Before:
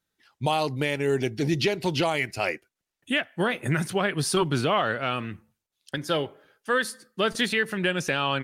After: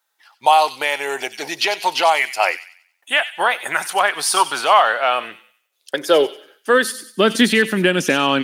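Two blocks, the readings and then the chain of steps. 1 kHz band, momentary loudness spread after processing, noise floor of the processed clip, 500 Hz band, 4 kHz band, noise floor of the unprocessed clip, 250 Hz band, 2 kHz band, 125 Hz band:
+12.5 dB, 10 LU, -69 dBFS, +7.5 dB, +8.5 dB, -85 dBFS, +5.5 dB, +9.0 dB, n/a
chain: high shelf 12000 Hz +8 dB; high-pass sweep 830 Hz -> 240 Hz, 4.78–7.29; thin delay 94 ms, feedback 36%, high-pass 2900 Hz, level -8 dB; gain +7.5 dB

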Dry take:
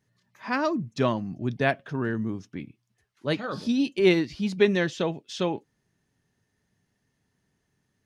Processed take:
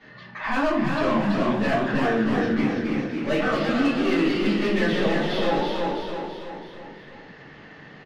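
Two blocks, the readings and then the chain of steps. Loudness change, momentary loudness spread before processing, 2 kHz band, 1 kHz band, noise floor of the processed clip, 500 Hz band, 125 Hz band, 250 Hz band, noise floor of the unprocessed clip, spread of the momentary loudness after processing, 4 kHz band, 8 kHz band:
+3.0 dB, 15 LU, +5.0 dB, +7.0 dB, -46 dBFS, +2.5 dB, +1.5 dB, +5.0 dB, -76 dBFS, 15 LU, +4.0 dB, n/a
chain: LPF 4100 Hz 24 dB/oct; reverse; compressor 4:1, threshold -34 dBFS, peak gain reduction 16.5 dB; reverse; overdrive pedal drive 24 dB, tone 2500 Hz, clips at -21.5 dBFS; on a send: feedback echo 0.329 s, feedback 42%, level -5 dB; on the sum: shoebox room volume 55 m³, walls mixed, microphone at 2.4 m; echoes that change speed 0.41 s, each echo +1 st, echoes 3, each echo -6 dB; three-band squash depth 40%; gain -6.5 dB

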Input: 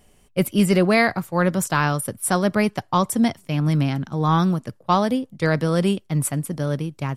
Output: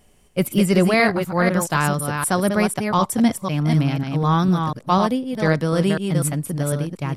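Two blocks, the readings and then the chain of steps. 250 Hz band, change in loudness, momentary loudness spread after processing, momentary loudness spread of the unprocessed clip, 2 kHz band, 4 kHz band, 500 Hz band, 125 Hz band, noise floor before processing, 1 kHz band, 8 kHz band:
+1.5 dB, +1.5 dB, 6 LU, 7 LU, +1.0 dB, +1.0 dB, +1.0 dB, +1.5 dB, -57 dBFS, +1.0 dB, +1.0 dB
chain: reverse delay 0.249 s, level -5 dB

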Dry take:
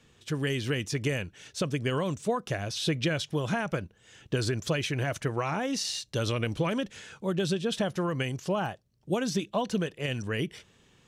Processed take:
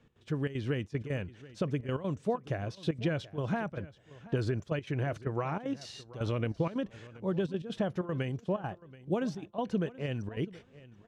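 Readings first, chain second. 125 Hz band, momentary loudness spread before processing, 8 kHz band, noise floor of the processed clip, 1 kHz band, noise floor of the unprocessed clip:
-2.5 dB, 6 LU, -18.5 dB, -61 dBFS, -5.0 dB, -63 dBFS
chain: LPF 1100 Hz 6 dB/oct; step gate "x.xxxx.xxxx." 191 bpm -12 dB; on a send: feedback echo 0.73 s, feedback 17%, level -19 dB; on the sum: gain -1.5 dB

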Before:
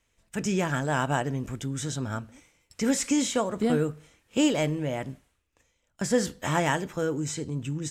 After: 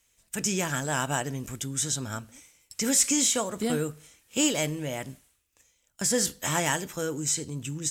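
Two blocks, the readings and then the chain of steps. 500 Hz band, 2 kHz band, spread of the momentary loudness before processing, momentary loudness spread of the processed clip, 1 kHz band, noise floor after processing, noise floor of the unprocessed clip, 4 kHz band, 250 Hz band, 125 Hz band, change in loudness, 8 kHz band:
-3.5 dB, 0.0 dB, 10 LU, 13 LU, -2.5 dB, -71 dBFS, -74 dBFS, +4.0 dB, -3.5 dB, -3.5 dB, +1.0 dB, +9.0 dB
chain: pre-emphasis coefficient 0.8; added harmonics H 5 -29 dB, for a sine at -18.5 dBFS; gain +9 dB

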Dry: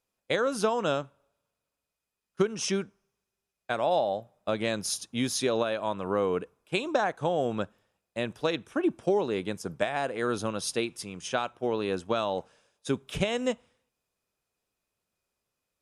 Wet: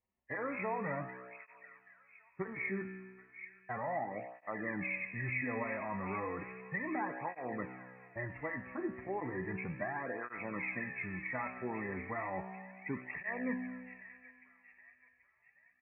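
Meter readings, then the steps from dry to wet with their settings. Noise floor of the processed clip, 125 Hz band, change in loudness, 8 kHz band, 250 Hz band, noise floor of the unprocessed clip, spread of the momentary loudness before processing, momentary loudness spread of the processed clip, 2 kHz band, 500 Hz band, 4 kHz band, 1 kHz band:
-70 dBFS, -6.5 dB, -9.5 dB, under -40 dB, -8.5 dB, under -85 dBFS, 8 LU, 14 LU, -2.0 dB, -13.5 dB, under -40 dB, -8.5 dB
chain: nonlinear frequency compression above 1600 Hz 4:1; low-pass opened by the level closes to 860 Hz, open at -25.5 dBFS; comb 1 ms, depth 50%; in parallel at -1 dB: negative-ratio compressor -36 dBFS, ratio -1; on the sum: resonator 63 Hz, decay 1.7 s, harmonics all, mix 80%; on a send: thin delay 0.781 s, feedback 44%, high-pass 2400 Hz, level -6.5 dB; on the sum: tape flanging out of phase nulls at 0.34 Hz, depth 7.2 ms; gain +2 dB

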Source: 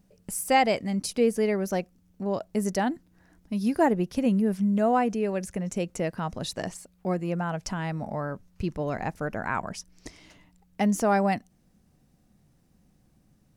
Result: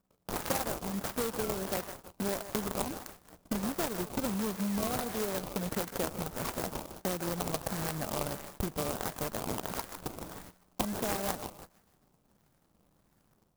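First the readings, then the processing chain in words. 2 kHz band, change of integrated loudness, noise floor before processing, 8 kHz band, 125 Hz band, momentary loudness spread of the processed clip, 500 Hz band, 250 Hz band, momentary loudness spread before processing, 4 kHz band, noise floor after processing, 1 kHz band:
-7.5 dB, -7.5 dB, -64 dBFS, -0.5 dB, -7.5 dB, 9 LU, -8.5 dB, -9.5 dB, 12 LU, -2.0 dB, -71 dBFS, -9.5 dB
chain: median filter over 41 samples; AGC gain up to 10 dB; resonant high shelf 3800 Hz +12.5 dB, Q 1.5; in parallel at -6 dB: wavefolder -11.5 dBFS; on the sum: tilt shelf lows -9 dB, about 640 Hz; compressor 6:1, threshold -32 dBFS, peak gain reduction 25.5 dB; on a send: thinning echo 0.155 s, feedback 56%, high-pass 790 Hz, level -7.5 dB; on the sum: decimation with a swept rate 17×, swing 100% 1.5 Hz; gate -46 dBFS, range -14 dB; clock jitter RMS 0.1 ms

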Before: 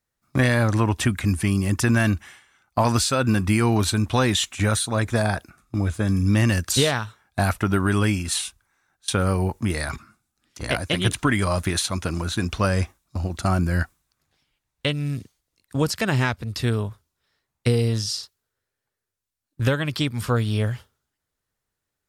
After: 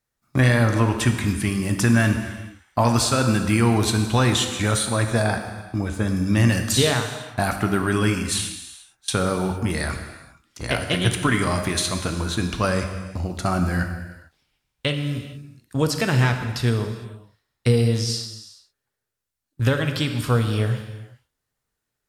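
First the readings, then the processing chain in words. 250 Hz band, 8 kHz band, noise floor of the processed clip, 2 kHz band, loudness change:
+1.0 dB, +1.0 dB, -81 dBFS, +1.0 dB, +1.0 dB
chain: non-linear reverb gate 0.48 s falling, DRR 5 dB

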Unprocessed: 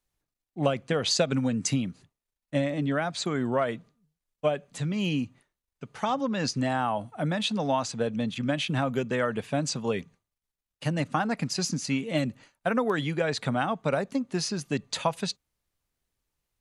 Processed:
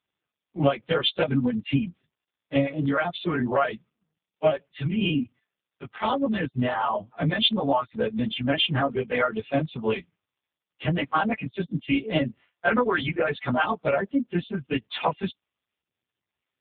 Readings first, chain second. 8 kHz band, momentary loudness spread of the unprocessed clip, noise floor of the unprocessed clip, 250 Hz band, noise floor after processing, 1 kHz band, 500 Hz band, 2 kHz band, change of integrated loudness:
under -40 dB, 6 LU, under -85 dBFS, +2.5 dB, under -85 dBFS, +3.5 dB, +2.5 dB, +4.5 dB, +2.5 dB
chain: frequency quantiser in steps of 2 st; reverb removal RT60 1.2 s; spectral gate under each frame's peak -30 dB strong; gain +6 dB; AMR-NB 5.15 kbps 8000 Hz

